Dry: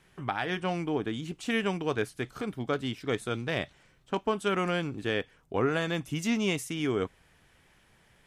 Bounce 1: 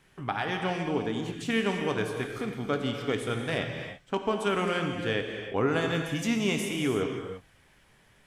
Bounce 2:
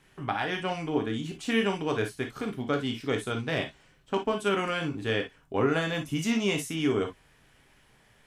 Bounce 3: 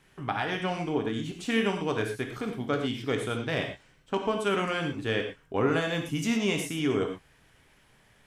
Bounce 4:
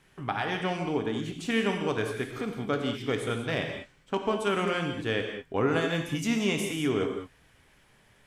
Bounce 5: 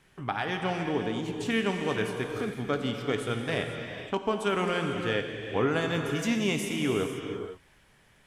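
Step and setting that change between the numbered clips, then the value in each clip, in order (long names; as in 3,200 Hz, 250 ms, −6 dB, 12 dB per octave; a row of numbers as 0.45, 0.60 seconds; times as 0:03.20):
reverb whose tail is shaped and stops, gate: 360, 80, 140, 230, 530 milliseconds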